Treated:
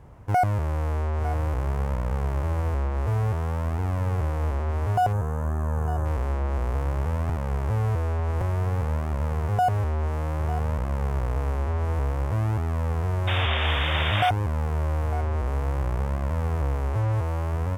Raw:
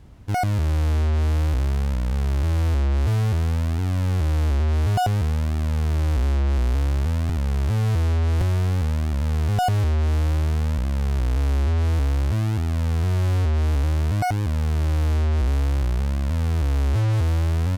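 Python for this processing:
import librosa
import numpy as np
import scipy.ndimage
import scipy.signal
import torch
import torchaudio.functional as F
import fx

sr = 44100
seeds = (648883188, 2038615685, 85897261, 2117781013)

y = fx.spec_box(x, sr, start_s=5.13, length_s=0.92, low_hz=1800.0, high_hz=5900.0, gain_db=-15)
y = fx.rider(y, sr, range_db=4, speed_s=0.5)
y = fx.graphic_eq(y, sr, hz=(125, 250, 500, 1000, 2000, 4000), db=(5, -3, 8, 9, 3, -8))
y = y + 10.0 ** (-13.5 / 20.0) * np.pad(y, (int(903 * sr / 1000.0), 0))[:len(y)]
y = fx.spec_paint(y, sr, seeds[0], shape='noise', start_s=13.27, length_s=1.03, low_hz=510.0, high_hz=3700.0, level_db=-21.0)
y = y * 10.0 ** (-7.0 / 20.0)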